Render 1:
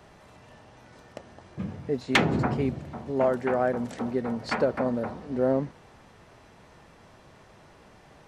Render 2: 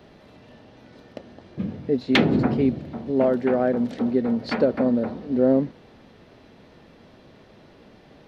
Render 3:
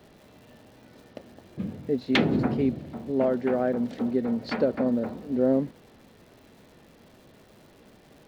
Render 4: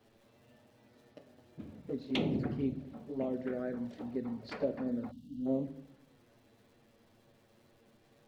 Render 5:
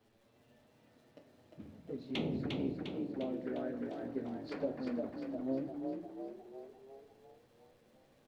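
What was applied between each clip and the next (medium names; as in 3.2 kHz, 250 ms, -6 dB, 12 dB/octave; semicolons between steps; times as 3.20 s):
graphic EQ 250/500/1000/4000/8000 Hz +8/+4/-4/+7/-12 dB
crackle 360 per s -45 dBFS; trim -4 dB
touch-sensitive flanger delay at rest 9.6 ms, full sweep at -19 dBFS; simulated room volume 97 m³, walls mixed, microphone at 0.31 m; time-frequency box 5.12–5.46 s, 290–2700 Hz -25 dB; trim -9 dB
flange 0.69 Hz, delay 9.3 ms, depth 4.1 ms, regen -66%; on a send: frequency-shifting echo 352 ms, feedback 55%, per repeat +36 Hz, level -4 dB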